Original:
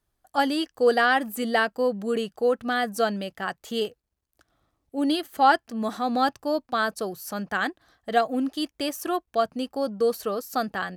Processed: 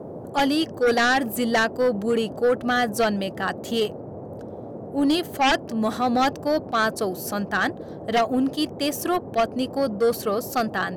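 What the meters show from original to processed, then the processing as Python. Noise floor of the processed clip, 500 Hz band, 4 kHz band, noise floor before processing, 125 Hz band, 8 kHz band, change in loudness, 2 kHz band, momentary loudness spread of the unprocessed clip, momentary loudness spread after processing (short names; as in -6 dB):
-37 dBFS, +2.5 dB, +3.5 dB, -79 dBFS, n/a, +5.5 dB, +2.5 dB, +2.5 dB, 10 LU, 7 LU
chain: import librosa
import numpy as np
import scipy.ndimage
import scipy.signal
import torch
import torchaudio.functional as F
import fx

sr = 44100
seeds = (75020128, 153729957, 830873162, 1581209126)

y = fx.dmg_noise_band(x, sr, seeds[0], low_hz=87.0, high_hz=630.0, level_db=-41.0)
y = fx.fold_sine(y, sr, drive_db=10, ceiling_db=-6.0)
y = fx.attack_slew(y, sr, db_per_s=410.0)
y = y * librosa.db_to_amplitude(-9.0)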